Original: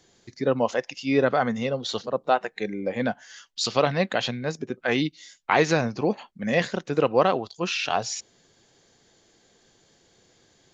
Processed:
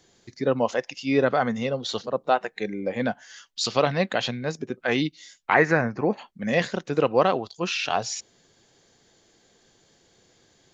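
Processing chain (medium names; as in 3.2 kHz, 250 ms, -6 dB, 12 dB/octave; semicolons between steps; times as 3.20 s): 5.54–6.13 s: resonant high shelf 2.5 kHz -9.5 dB, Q 3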